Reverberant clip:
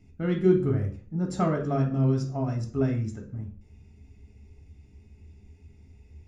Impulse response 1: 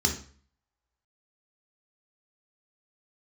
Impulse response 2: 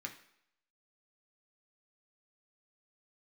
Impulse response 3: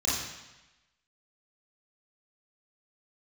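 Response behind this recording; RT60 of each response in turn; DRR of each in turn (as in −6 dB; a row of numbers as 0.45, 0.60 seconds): 1; 0.45, 0.70, 1.0 seconds; 1.0, 1.5, −8.5 decibels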